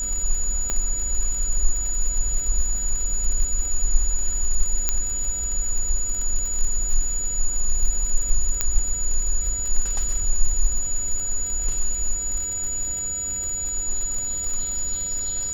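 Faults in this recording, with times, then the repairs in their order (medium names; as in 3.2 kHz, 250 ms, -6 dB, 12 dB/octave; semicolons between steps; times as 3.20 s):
crackle 36 per s -28 dBFS
whine 6.9 kHz -25 dBFS
0.70 s: pop -12 dBFS
4.89 s: pop -6 dBFS
8.61 s: pop -5 dBFS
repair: de-click; band-stop 6.9 kHz, Q 30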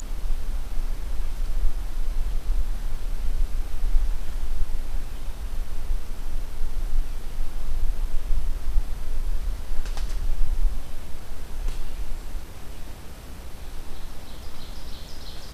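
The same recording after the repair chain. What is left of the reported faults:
nothing left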